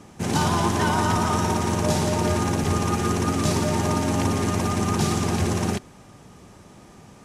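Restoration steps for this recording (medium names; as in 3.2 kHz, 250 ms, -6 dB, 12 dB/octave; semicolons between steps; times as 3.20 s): clip repair -10.5 dBFS; interpolate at 2.64 s, 2.6 ms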